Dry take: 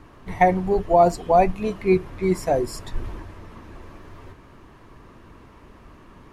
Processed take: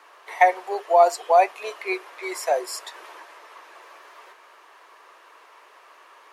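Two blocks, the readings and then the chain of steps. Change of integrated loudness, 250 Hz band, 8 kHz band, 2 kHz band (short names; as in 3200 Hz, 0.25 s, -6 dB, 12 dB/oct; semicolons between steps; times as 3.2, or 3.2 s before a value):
-1.5 dB, -15.5 dB, +4.5 dB, +4.0 dB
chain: Bessel high-pass 790 Hz, order 8; gain +4.5 dB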